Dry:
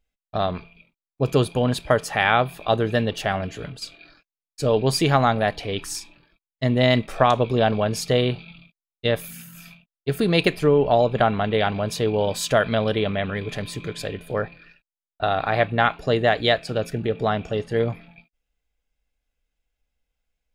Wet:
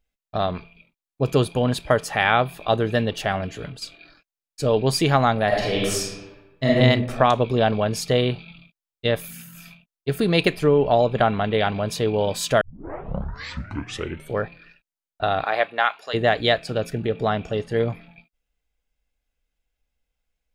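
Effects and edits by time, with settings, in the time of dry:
5.47–6.77 reverb throw, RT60 1.1 s, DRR -5.5 dB
12.61 tape start 1.79 s
15.43–16.13 HPF 360 Hz -> 1100 Hz

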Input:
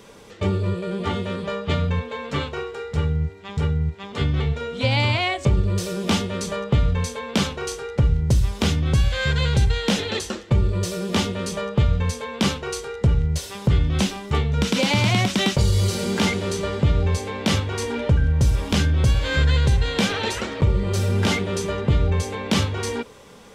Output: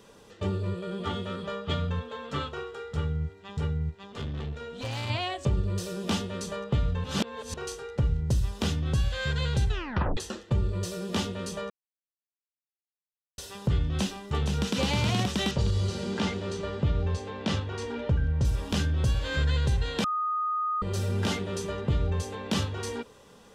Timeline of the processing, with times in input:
0.78–3.35 small resonant body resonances 1300/3300 Hz, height 12 dB
3.91–5.1 tube stage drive 22 dB, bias 0.5
7.04–7.54 reverse
9.68 tape stop 0.49 s
11.7–13.38 mute
13.94–14.76 echo throw 0.47 s, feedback 50%, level -5 dB
15.51–18.45 air absorption 76 m
20.04–20.82 bleep 1240 Hz -18 dBFS
whole clip: notch 2200 Hz, Q 7.9; gain -7.5 dB

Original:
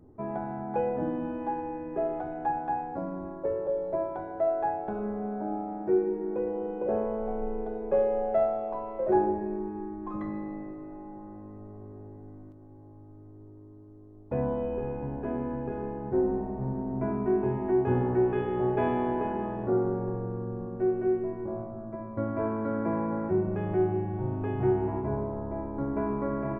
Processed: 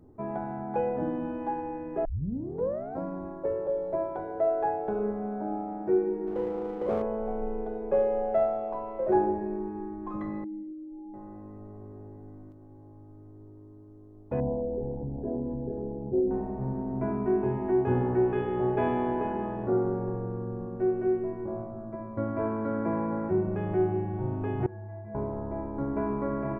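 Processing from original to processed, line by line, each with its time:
2.05 tape start 0.96 s
4.15–5.12 bell 450 Hz +10 dB 0.26 oct
6.27–7.02 running maximum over 9 samples
10.44–11.14 spectral contrast raised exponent 2.6
14.4–16.31 formant sharpening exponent 2
24.66–25.15 metallic resonator 100 Hz, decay 0.83 s, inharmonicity 0.03

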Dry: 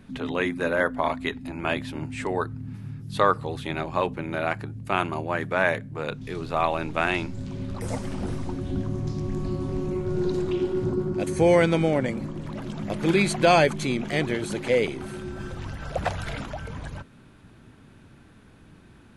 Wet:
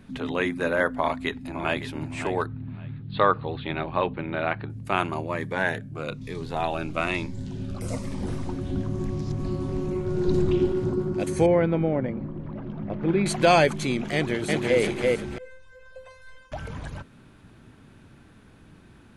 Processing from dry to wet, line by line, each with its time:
0.9–1.86 echo throw 0.56 s, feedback 20%, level -11 dB
2.46–4.7 steep low-pass 4200 Hz 72 dB/oct
5.26–8.27 cascading phaser falling 1.1 Hz
8.99–9.4 reverse
10.28–10.72 low shelf 240 Hz +9.5 dB
11.46–13.26 tape spacing loss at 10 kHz 45 dB
14.14–14.81 echo throw 0.34 s, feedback 35%, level -1.5 dB
15.38–16.52 resonator 520 Hz, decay 0.36 s, mix 100%

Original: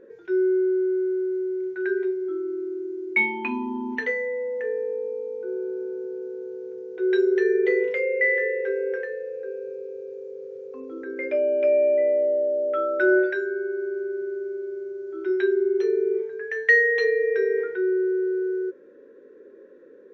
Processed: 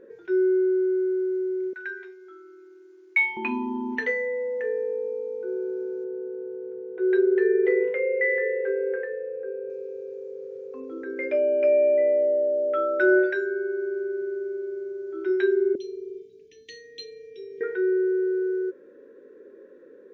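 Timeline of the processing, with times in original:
1.73–3.37 HPF 1100 Hz
6.04–9.7 LPF 1900 Hz
11.43–12.59 Butterworth band-stop 3500 Hz, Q 4.3
15.75–17.61 elliptic band-stop 300–3200 Hz

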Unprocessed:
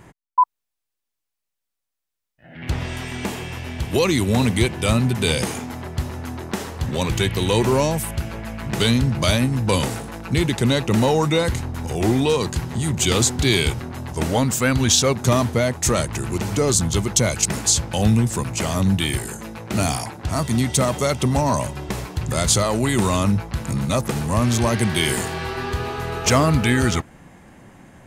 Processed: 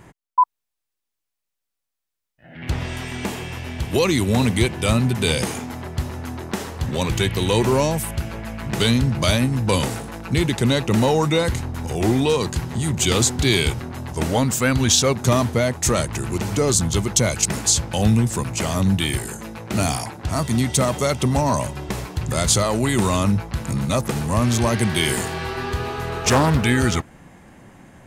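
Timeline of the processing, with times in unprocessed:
26.09–26.63 Doppler distortion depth 0.55 ms

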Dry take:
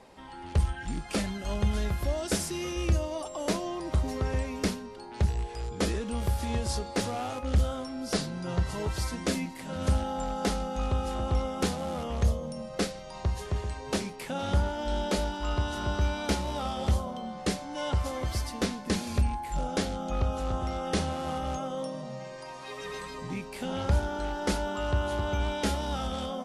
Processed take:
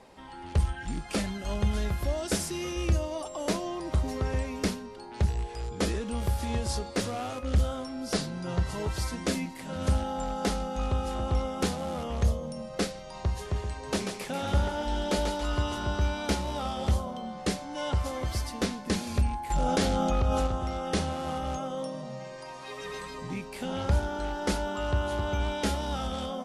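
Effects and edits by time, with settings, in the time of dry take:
6.89–7.6 notch 830 Hz
13.69–15.76 thinning echo 0.14 s, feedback 47%, high-pass 410 Hz, level -5 dB
19.5–20.47 fast leveller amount 70%

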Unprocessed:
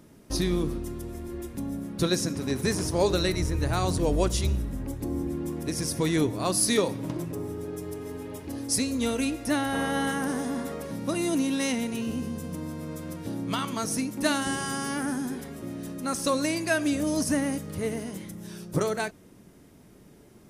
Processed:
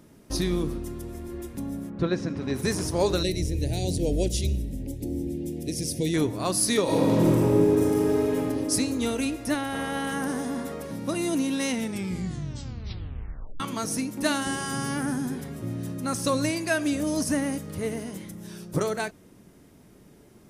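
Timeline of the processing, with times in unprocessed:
1.89–2.53 LPF 1600 Hz -> 4100 Hz
3.23–6.14 Butterworth band-stop 1200 Hz, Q 0.66
6.83–8.35 reverb throw, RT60 2.9 s, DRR -10.5 dB
9.54–10.12 tube stage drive 18 dB, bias 0.6
11.75 tape stop 1.85 s
14.72–16.5 bell 120 Hz +12.5 dB

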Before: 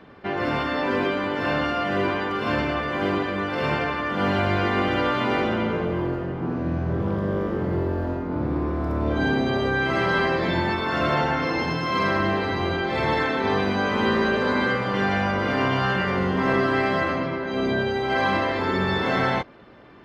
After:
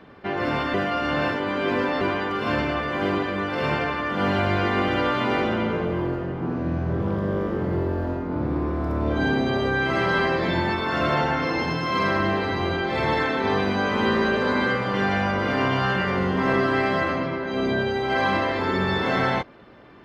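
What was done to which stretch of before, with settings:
0.74–2.01 reverse

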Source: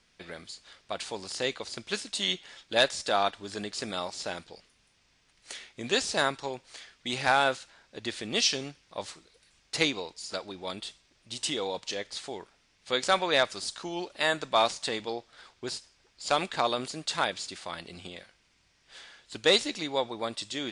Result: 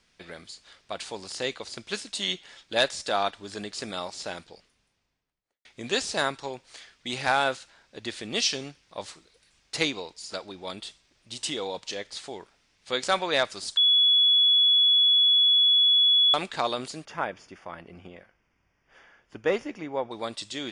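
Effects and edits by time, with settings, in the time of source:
4.37–5.65 studio fade out
13.77–16.34 bleep 3390 Hz -16.5 dBFS
17.05–20.11 running mean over 11 samples

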